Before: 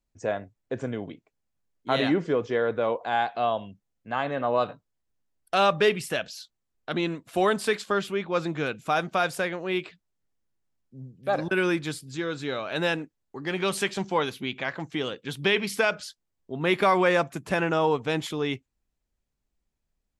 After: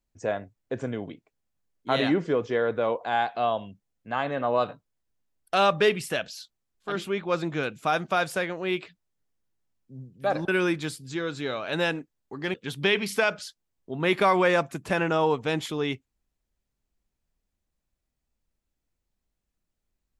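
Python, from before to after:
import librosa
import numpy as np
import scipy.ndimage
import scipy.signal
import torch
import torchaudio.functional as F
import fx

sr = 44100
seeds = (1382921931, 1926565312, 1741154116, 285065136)

y = fx.edit(x, sr, fx.cut(start_s=6.92, length_s=1.03, crossfade_s=0.24),
    fx.cut(start_s=13.57, length_s=1.58), tone=tone)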